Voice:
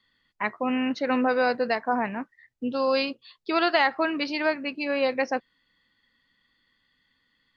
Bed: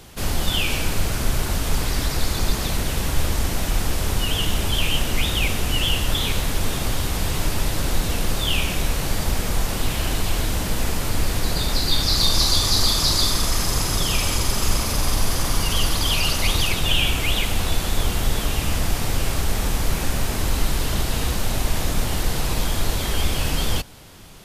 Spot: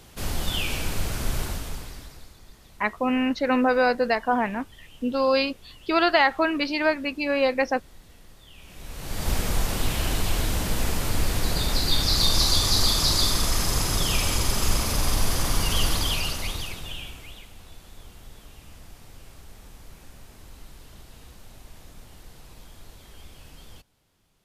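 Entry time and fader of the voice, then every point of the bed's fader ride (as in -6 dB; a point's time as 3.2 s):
2.40 s, +2.5 dB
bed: 1.43 s -5.5 dB
2.41 s -28.5 dB
8.54 s -28.5 dB
9.31 s -2.5 dB
15.94 s -2.5 dB
17.5 s -24.5 dB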